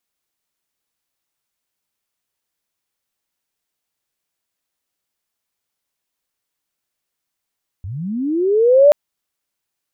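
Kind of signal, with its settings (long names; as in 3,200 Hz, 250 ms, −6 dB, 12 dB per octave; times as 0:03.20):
glide linear 82 Hz → 600 Hz −25.5 dBFS → −4.5 dBFS 1.08 s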